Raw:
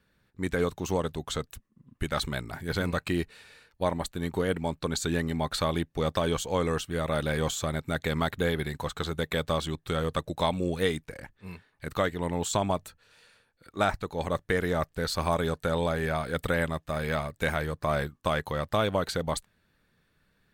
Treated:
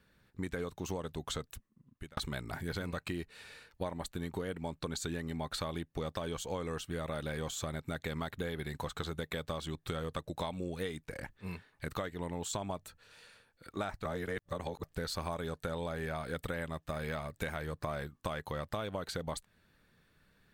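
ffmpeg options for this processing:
ffmpeg -i in.wav -filter_complex "[0:a]asplit=4[link_01][link_02][link_03][link_04];[link_01]atrim=end=2.17,asetpts=PTS-STARTPTS,afade=type=out:start_time=1.32:duration=0.85[link_05];[link_02]atrim=start=2.17:end=14.052,asetpts=PTS-STARTPTS,afade=type=in:duration=0.004:curve=hsin[link_06];[link_03]atrim=start=14.048:end=14.832,asetpts=PTS-STARTPTS,areverse[link_07];[link_04]atrim=start=14.828[link_08];[link_05][link_06]concat=n=2:v=0:a=1[link_09];[link_09][link_07]acrossfade=duration=0.004:curve1=hsin:curve2=hsin[link_10];[link_10][link_08]acrossfade=duration=0.004:curve1=hsin:curve2=hsin,acompressor=threshold=-36dB:ratio=6,volume=1dB" out.wav

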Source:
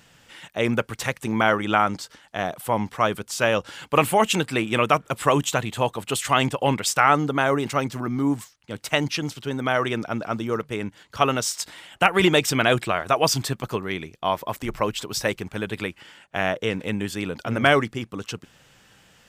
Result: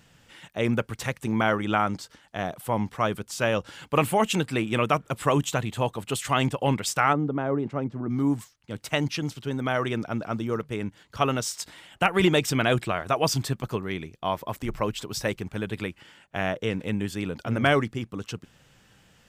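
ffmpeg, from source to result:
ffmpeg -i in.wav -filter_complex "[0:a]asplit=3[link_01][link_02][link_03];[link_01]afade=type=out:start_time=7.12:duration=0.02[link_04];[link_02]bandpass=frequency=280:width_type=q:width=0.51,afade=type=in:start_time=7.12:duration=0.02,afade=type=out:start_time=8.09:duration=0.02[link_05];[link_03]afade=type=in:start_time=8.09:duration=0.02[link_06];[link_04][link_05][link_06]amix=inputs=3:normalize=0,lowshelf=frequency=290:gain=6.5,volume=-5dB" out.wav

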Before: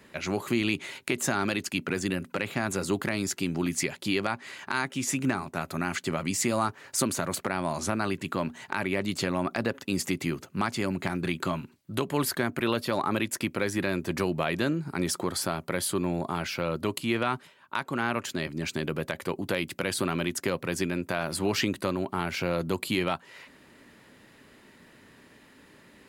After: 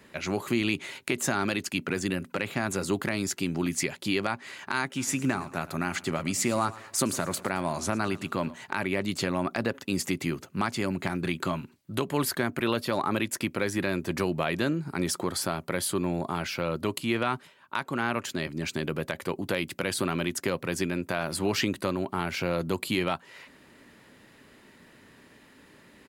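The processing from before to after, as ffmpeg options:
ffmpeg -i in.wav -filter_complex "[0:a]asplit=3[link_01][link_02][link_03];[link_01]afade=type=out:start_time=4.96:duration=0.02[link_04];[link_02]aecho=1:1:111|222|333|444:0.119|0.0535|0.0241|0.0108,afade=type=in:start_time=4.96:duration=0.02,afade=type=out:start_time=8.54:duration=0.02[link_05];[link_03]afade=type=in:start_time=8.54:duration=0.02[link_06];[link_04][link_05][link_06]amix=inputs=3:normalize=0" out.wav

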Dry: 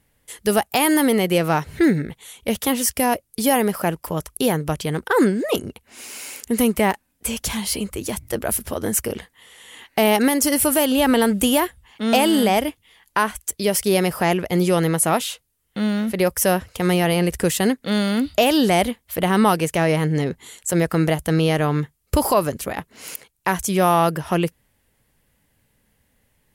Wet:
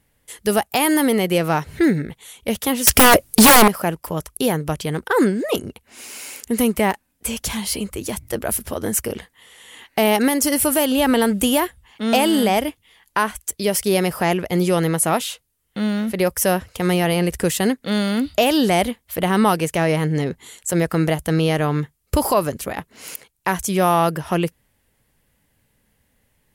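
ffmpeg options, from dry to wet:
ffmpeg -i in.wav -filter_complex "[0:a]asettb=1/sr,asplit=3[link_01][link_02][link_03];[link_01]atrim=end=2.874[link_04];[link_02]atrim=start=2.87:end=3.68,asetpts=PTS-STARTPTS,afade=type=in:duration=0.004:curve=qsin,afade=type=out:start_time=0.806:duration=0.004:curve=qsin,aeval=exprs='0.531*sin(PI/2*5.01*val(0)/0.531)':channel_layout=same[link_05];[link_03]atrim=start=3.676[link_06];[link_04][link_05]acrossfade=duration=0.004:curve1=hsin:curve2=qsin[link_07];[link_07][link_06]acrossfade=duration=0.004:curve1=qsin:curve2=hsin" out.wav

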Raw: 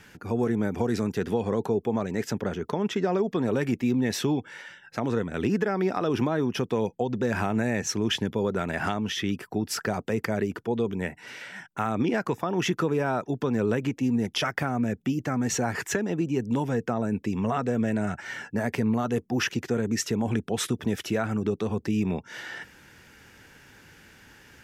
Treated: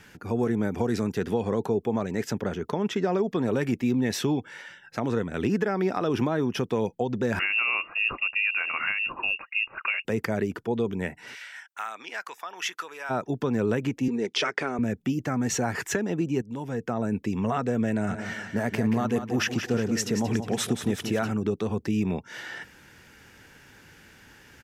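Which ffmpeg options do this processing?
ffmpeg -i in.wav -filter_complex "[0:a]asettb=1/sr,asplit=3[link_01][link_02][link_03];[link_01]atrim=end=7.394[link_04];[link_02]atrim=start=7.39:end=10.05,asetpts=PTS-STARTPTS,afade=type=in:duration=0.004:curve=qsin,afade=type=out:start_time=2.656:duration=0.004:curve=qsin,lowpass=frequency=2500:width_type=q:width=0.5098,lowpass=frequency=2500:width_type=q:width=0.6013,lowpass=frequency=2500:width_type=q:width=0.9,lowpass=frequency=2500:width_type=q:width=2.563,afreqshift=-2900[link_05];[link_03]atrim=start=10.046[link_06];[link_04][link_05]acrossfade=duration=0.004:curve1=hsin:curve2=qsin[link_07];[link_07][link_06]acrossfade=duration=0.004:curve1=qsin:curve2=hsin,asplit=3[link_08][link_09][link_10];[link_08]afade=type=out:start_time=11.34:duration=0.02[link_11];[link_09]highpass=1300,afade=type=in:start_time=11.34:duration=0.02,afade=type=out:start_time=13.09:duration=0.02[link_12];[link_10]afade=type=in:start_time=13.09:duration=0.02[link_13];[link_11][link_12][link_13]amix=inputs=3:normalize=0,asettb=1/sr,asplit=3[link_14][link_15][link_16];[link_14]atrim=end=14.084[link_17];[link_15]atrim=start=14.08:end=14.79,asetpts=PTS-STARTPTS,afade=type=in:duration=0.004:curve=qsin,afade=type=out:start_time=0.706:duration=0.004:curve=qsin,highpass=280,equalizer=frequency=410:width_type=q:width=4:gain=9,equalizer=frequency=750:width_type=q:width=4:gain=-5,equalizer=frequency=2300:width_type=q:width=4:gain=4,equalizer=frequency=4100:width_type=q:width=4:gain=4,lowpass=frequency=8500:width=0.5412,lowpass=frequency=8500:width=1.3066[link_18];[link_16]atrim=start=14.786[link_19];[link_17][link_18]acrossfade=duration=0.004:curve1=hsin:curve2=qsin[link_20];[link_20][link_19]acrossfade=duration=0.004:curve1=qsin:curve2=hsin,asplit=3[link_21][link_22][link_23];[link_21]afade=type=out:start_time=18.08:duration=0.02[link_24];[link_22]aecho=1:1:180|360|540|720|900:0.355|0.16|0.0718|0.0323|0.0145,afade=type=in:start_time=18.08:duration=0.02,afade=type=out:start_time=21.3:duration=0.02[link_25];[link_23]afade=type=in:start_time=21.3:duration=0.02[link_26];[link_24][link_25][link_26]amix=inputs=3:normalize=0,asplit=2[link_27][link_28];[link_27]atrim=end=16.42,asetpts=PTS-STARTPTS,afade=type=out:start_time=16.416:duration=0.004:curve=hsin:silence=0.199526[link_29];[link_28]atrim=start=16.42,asetpts=PTS-STARTPTS,afade=type=in:duration=0.62:silence=0.199526[link_30];[link_29][link_30]concat=n=2:v=0:a=1" out.wav

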